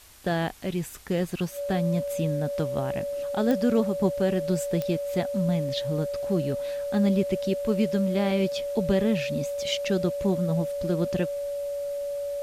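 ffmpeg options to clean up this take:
-af "adeclick=t=4,bandreject=f=570:w=30,afwtdn=0.0028"

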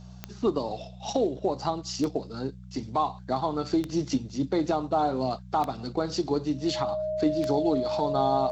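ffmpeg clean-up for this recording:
-af "adeclick=t=4,bandreject=f=61.8:t=h:w=4,bandreject=f=123.6:t=h:w=4,bandreject=f=185.4:t=h:w=4,bandreject=f=620:w=30"

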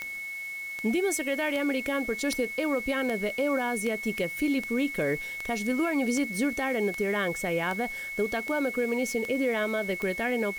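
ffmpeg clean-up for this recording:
-af "adeclick=t=4,bandreject=f=2.2k:w=30,afwtdn=0.0028"

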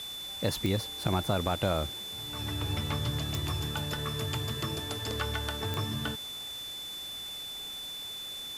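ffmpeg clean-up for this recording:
-af "adeclick=t=4,bandreject=f=3.5k:w=30,afwtdn=0.0045"

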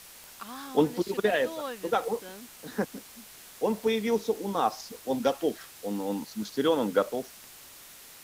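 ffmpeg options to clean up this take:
-af "adeclick=t=4,afwtdn=0.004"

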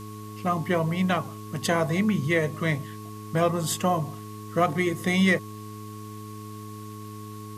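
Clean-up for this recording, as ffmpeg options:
-af "bandreject=f=105.9:t=h:w=4,bandreject=f=211.8:t=h:w=4,bandreject=f=317.7:t=h:w=4,bandreject=f=423.6:t=h:w=4,bandreject=f=1.1k:w=30,afwtdn=0.0028"

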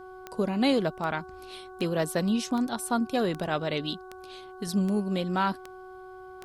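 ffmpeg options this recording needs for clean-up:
-af "adeclick=t=4,bandreject=f=372.5:t=h:w=4,bandreject=f=745:t=h:w=4,bandreject=f=1.1175k:t=h:w=4,bandreject=f=1.49k:t=h:w=4"

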